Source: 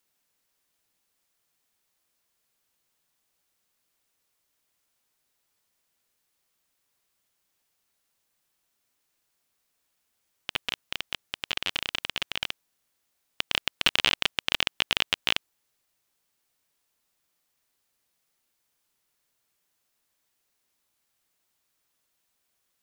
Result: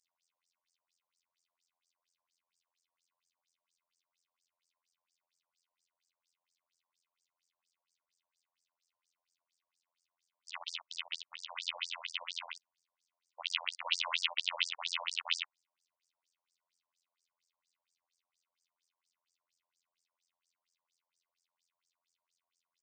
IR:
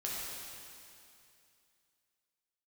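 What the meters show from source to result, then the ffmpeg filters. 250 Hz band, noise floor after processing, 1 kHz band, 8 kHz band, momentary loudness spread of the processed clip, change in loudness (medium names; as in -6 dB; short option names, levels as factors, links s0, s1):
under -40 dB, under -85 dBFS, -7.0 dB, -7.0 dB, 12 LU, -8.5 dB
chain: -af "afftfilt=real='hypot(re,im)*cos(PI*b)':imag='0':win_size=2048:overlap=0.75,equalizer=f=250:t=o:w=0.33:g=-4,equalizer=f=400:t=o:w=0.33:g=-5,equalizer=f=1600:t=o:w=0.33:g=-10,equalizer=f=12500:t=o:w=0.33:g=-10,aecho=1:1:26|60:0.211|0.708,afftfilt=real='re*between(b*sr/1024,720*pow(6700/720,0.5+0.5*sin(2*PI*4.3*pts/sr))/1.41,720*pow(6700/720,0.5+0.5*sin(2*PI*4.3*pts/sr))*1.41)':imag='im*between(b*sr/1024,720*pow(6700/720,0.5+0.5*sin(2*PI*4.3*pts/sr))/1.41,720*pow(6700/720,0.5+0.5*sin(2*PI*4.3*pts/sr))*1.41)':win_size=1024:overlap=0.75,volume=1.19"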